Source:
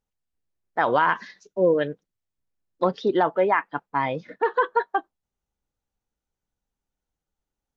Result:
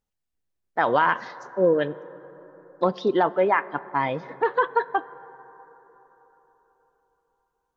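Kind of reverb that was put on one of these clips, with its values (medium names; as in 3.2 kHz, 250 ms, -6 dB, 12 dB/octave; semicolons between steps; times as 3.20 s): plate-style reverb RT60 4.3 s, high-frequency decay 0.3×, DRR 17.5 dB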